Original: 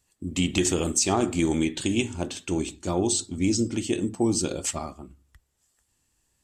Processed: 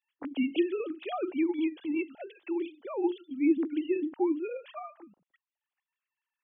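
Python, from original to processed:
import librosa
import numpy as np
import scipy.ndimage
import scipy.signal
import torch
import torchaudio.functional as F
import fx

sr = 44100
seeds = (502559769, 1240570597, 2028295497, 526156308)

y = fx.sine_speech(x, sr)
y = fx.transient(y, sr, attack_db=-8, sustain_db=-4, at=(1.42, 2.07), fade=0.02)
y = y * librosa.db_to_amplitude(-4.5)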